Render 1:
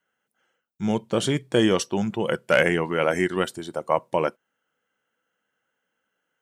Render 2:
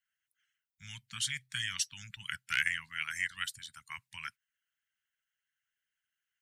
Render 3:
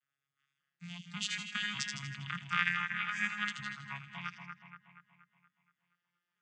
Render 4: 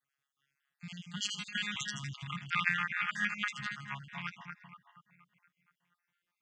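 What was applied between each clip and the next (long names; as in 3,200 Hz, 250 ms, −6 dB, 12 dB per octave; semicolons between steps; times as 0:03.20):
Chebyshev band-stop filter 120–1,800 Hz, order 3; harmonic and percussive parts rebalanced harmonic −15 dB; level −1.5 dB
vocoder with an arpeggio as carrier major triad, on C#3, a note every 577 ms; echo with a time of its own for lows and highs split 2,500 Hz, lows 237 ms, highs 80 ms, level −5 dB
time-frequency cells dropped at random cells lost 36%; level +2.5 dB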